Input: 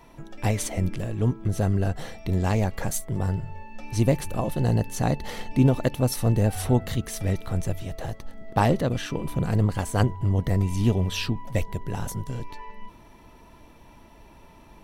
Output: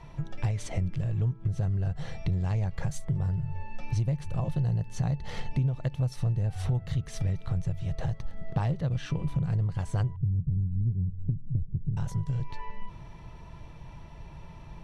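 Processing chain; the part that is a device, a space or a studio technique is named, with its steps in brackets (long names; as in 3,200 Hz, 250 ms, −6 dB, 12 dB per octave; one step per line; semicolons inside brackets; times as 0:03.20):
0:10.16–0:11.97: inverse Chebyshev low-pass filter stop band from 1,700 Hz, stop band 80 dB
jukebox (low-pass filter 6,200 Hz 12 dB per octave; low shelf with overshoot 190 Hz +7 dB, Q 3; downward compressor 6 to 1, threshold −26 dBFS, peak gain reduction 19.5 dB)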